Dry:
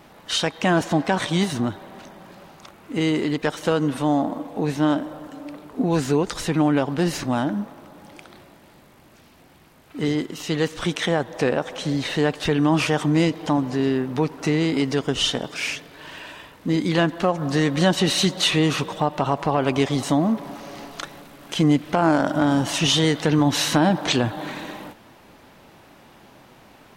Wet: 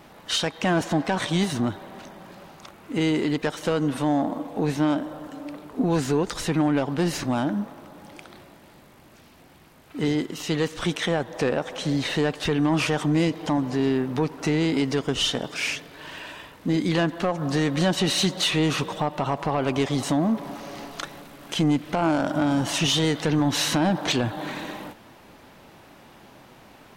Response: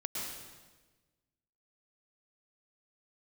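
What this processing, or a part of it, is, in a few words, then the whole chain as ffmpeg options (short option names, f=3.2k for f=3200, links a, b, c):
soft clipper into limiter: -af "asoftclip=type=tanh:threshold=-11.5dB,alimiter=limit=-14.5dB:level=0:latency=1:release=352"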